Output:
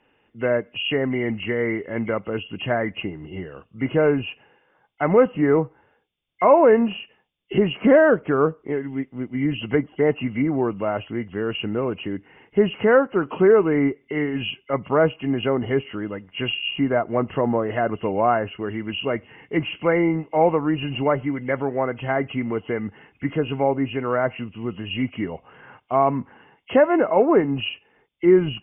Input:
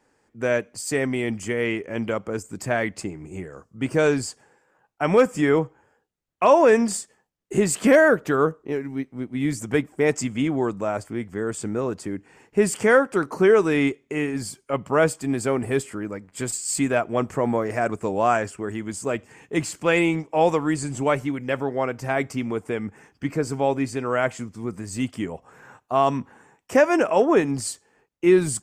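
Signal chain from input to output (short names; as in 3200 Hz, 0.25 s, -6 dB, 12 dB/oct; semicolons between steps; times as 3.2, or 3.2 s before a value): nonlinear frequency compression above 2000 Hz 4:1; treble ducked by the level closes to 1400 Hz, closed at -18.5 dBFS; gain +1.5 dB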